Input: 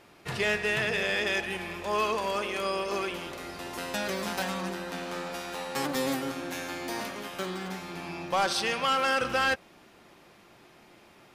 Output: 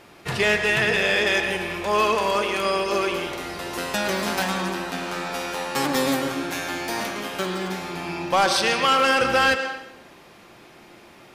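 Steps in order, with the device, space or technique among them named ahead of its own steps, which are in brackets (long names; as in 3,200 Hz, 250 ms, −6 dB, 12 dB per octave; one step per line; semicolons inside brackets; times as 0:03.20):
filtered reverb send (on a send: high-pass filter 250 Hz 24 dB per octave + low-pass filter 7,600 Hz + convolution reverb RT60 0.85 s, pre-delay 100 ms, DRR 7 dB)
on the sum: level +7 dB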